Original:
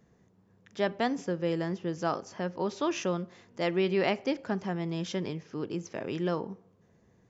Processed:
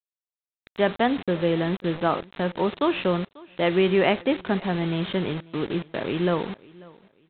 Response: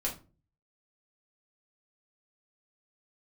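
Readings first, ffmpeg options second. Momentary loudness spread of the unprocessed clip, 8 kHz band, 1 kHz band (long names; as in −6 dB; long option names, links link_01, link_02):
9 LU, can't be measured, +7.0 dB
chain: -af "aresample=8000,acrusher=bits=6:mix=0:aa=0.000001,aresample=44100,aecho=1:1:542|1084:0.0708|0.0212,volume=7dB"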